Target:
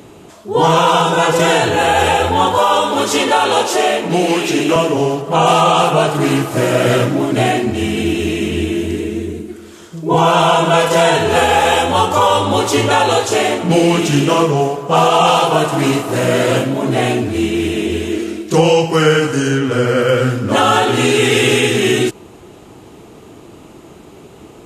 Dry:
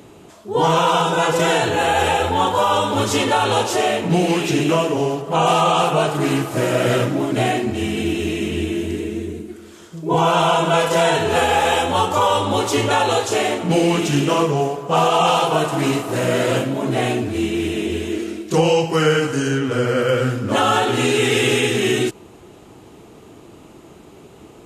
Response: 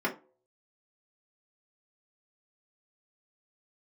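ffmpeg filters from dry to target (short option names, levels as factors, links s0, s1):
-filter_complex "[0:a]asettb=1/sr,asplit=3[s0][s1][s2];[s0]atrim=end=2.584[s3];[s1]atrim=start=2.58:end=4.76,asetpts=PTS-STARTPTS,afade=t=in:d=0.004:c=qsin,afade=t=out:st=2.176:d=0.004:c=qsin,highpass=240[s4];[s2]atrim=start=4.756[s5];[s3][s4]acrossfade=d=0.004:c1=hsin:c2=qsin[s6];[s6][s5]acrossfade=d=0.004:c1=qsin:c2=hsin,volume=1.68"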